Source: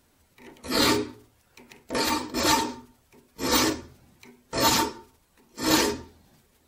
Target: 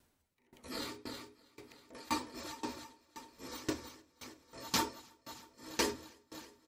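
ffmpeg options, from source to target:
ffmpeg -i in.wav -af "aecho=1:1:320|640|960|1280|1600|1920:0.168|0.099|0.0584|0.0345|0.0203|0.012,aeval=exprs='val(0)*pow(10,-25*if(lt(mod(1.9*n/s,1),2*abs(1.9)/1000),1-mod(1.9*n/s,1)/(2*abs(1.9)/1000),(mod(1.9*n/s,1)-2*abs(1.9)/1000)/(1-2*abs(1.9)/1000))/20)':channel_layout=same,volume=-6dB" out.wav

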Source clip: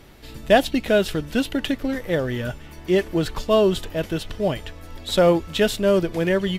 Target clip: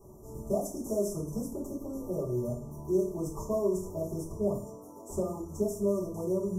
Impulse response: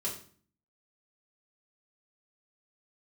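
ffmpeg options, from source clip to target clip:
-filter_complex "[0:a]asettb=1/sr,asplit=3[link_01][link_02][link_03];[link_01]atrim=end=0.654[link_04];[link_02]atrim=start=0.65:end=1.29,asetpts=PTS-STARTPTS,afade=type=in:duration=0.004:curve=qsin,afade=type=out:start_time=0.636:duration=0.004:curve=qsin,equalizer=frequency=8200:width_type=o:width=2.6:gain=13[link_05];[link_03]atrim=start=1.286[link_06];[link_04][link_05]acrossfade=duration=0.004:curve1=hsin:curve2=qsin[link_07];[link_07][link_06]acrossfade=duration=0.004:curve1=qsin:curve2=hsin,asettb=1/sr,asplit=3[link_08][link_09][link_10];[link_08]atrim=end=4.604[link_11];[link_09]atrim=start=4.6:end=5.1,asetpts=PTS-STARTPTS,afade=type=in:duration=0.004:curve=qsin,afade=type=out:start_time=0.496:duration=0.004:curve=qsin,highpass=frequency=180:width=0.5412,highpass=frequency=180:width=1.3066[link_12];[link_10]atrim=start=5.096[link_13];[link_11][link_12]acrossfade=duration=0.004:curve1=hsin:curve2=qsin[link_14];[link_14][link_13]acrossfade=duration=0.004:curve1=qsin:curve2=hsin,acrossover=split=1700|3600[link_15][link_16][link_17];[link_15]acompressor=threshold=-28dB:ratio=4[link_18];[link_16]acompressor=threshold=-36dB:ratio=4[link_19];[link_17]acompressor=threshold=-37dB:ratio=4[link_20];[link_18][link_19][link_20]amix=inputs=3:normalize=0,asuperstop=centerf=2600:order=20:qfactor=0.57[link_21];[1:a]atrim=start_sample=2205[link_22];[link_21][link_22]afir=irnorm=-1:irlink=0,volume=-6.5dB"

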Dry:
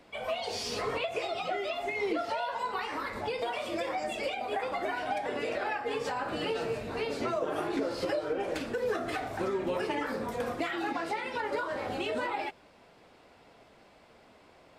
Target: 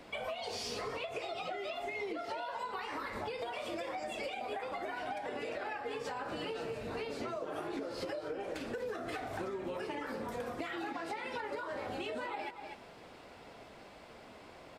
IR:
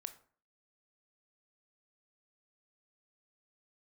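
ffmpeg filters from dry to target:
-af "aecho=1:1:244:0.168,acompressor=threshold=-42dB:ratio=6,volume=4.5dB"

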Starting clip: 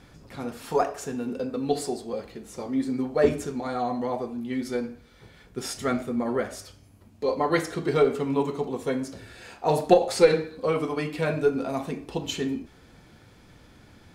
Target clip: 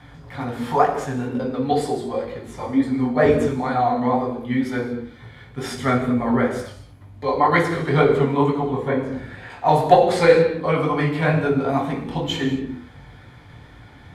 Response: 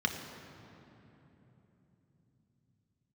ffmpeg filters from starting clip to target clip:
-filter_complex "[0:a]asettb=1/sr,asplit=3[link_01][link_02][link_03];[link_01]atrim=end=8.504[link_04];[link_02]atrim=start=8.5:end=9.5,asetpts=PTS-STARTPTS,afade=type=in:duration=0.004:curve=qsin,afade=type=out:start_time=0.996:duration=0.004:curve=qsin,acrossover=split=2600[link_05][link_06];[link_06]acompressor=threshold=-57dB:ratio=4:attack=1:release=60[link_07];[link_05][link_07]amix=inputs=2:normalize=0[link_08];[link_03]atrim=start=9.496[link_09];[link_04][link_08]acrossfade=duration=0.004:curve1=hsin:curve2=qsin[link_10];[link_10][link_09]acrossfade=duration=0.004:curve1=qsin:curve2=hsin,flanger=delay=17:depth=7.2:speed=2.1[link_11];[1:a]atrim=start_sample=2205,atrim=end_sample=6615,asetrate=27342,aresample=44100[link_12];[link_11][link_12]afir=irnorm=-1:irlink=0"

